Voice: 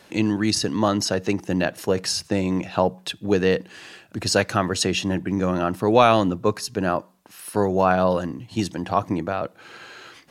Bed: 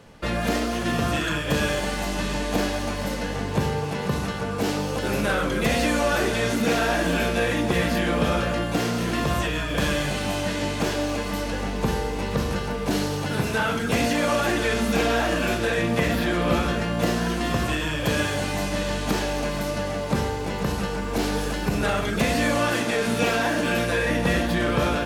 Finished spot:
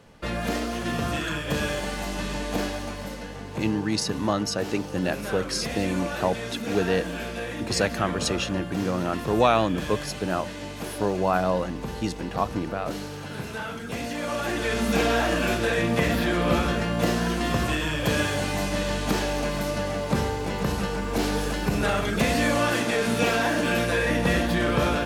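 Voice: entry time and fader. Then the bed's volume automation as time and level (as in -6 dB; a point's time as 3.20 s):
3.45 s, -4.5 dB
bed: 2.62 s -3.5 dB
3.37 s -9.5 dB
14.04 s -9.5 dB
14.92 s -0.5 dB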